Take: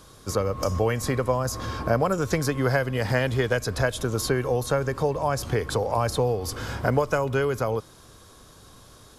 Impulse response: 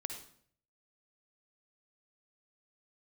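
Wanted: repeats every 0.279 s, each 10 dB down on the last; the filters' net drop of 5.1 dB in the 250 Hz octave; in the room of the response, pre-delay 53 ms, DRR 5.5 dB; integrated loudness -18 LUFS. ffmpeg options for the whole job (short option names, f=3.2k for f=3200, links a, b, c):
-filter_complex "[0:a]equalizer=f=250:t=o:g=-7.5,aecho=1:1:279|558|837|1116:0.316|0.101|0.0324|0.0104,asplit=2[a][b];[1:a]atrim=start_sample=2205,adelay=53[c];[b][c]afir=irnorm=-1:irlink=0,volume=-4.5dB[d];[a][d]amix=inputs=2:normalize=0,volume=7.5dB"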